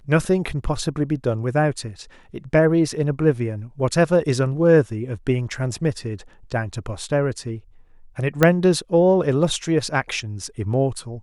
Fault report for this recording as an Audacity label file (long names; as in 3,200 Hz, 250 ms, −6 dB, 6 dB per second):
8.430000	8.430000	click −2 dBFS